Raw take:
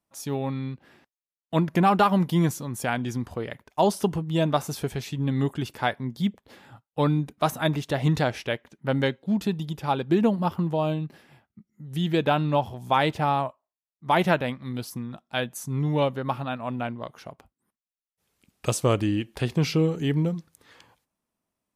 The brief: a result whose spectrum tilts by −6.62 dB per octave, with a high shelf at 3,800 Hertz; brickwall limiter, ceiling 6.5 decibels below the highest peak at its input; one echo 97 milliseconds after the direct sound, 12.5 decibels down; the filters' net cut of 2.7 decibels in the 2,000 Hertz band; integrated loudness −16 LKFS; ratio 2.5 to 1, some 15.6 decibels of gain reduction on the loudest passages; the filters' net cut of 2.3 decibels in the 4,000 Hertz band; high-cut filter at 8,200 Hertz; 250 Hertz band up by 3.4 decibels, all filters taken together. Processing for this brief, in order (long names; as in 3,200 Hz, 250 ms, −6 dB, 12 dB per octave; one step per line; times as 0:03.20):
low-pass filter 8,200 Hz
parametric band 250 Hz +5 dB
parametric band 2,000 Hz −4 dB
high-shelf EQ 3,800 Hz +4.5 dB
parametric band 4,000 Hz −4 dB
downward compressor 2.5 to 1, threshold −39 dBFS
brickwall limiter −27.5 dBFS
single-tap delay 97 ms −12.5 dB
level +22.5 dB